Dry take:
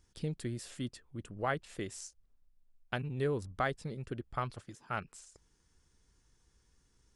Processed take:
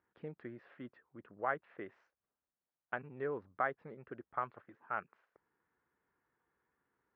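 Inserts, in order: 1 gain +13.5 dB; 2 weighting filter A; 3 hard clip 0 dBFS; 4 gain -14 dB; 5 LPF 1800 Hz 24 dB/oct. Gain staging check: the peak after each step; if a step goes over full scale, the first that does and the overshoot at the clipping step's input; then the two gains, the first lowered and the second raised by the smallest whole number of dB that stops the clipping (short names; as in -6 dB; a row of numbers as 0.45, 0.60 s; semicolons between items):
-4.5, -3.5, -3.5, -17.5, -20.0 dBFS; no overload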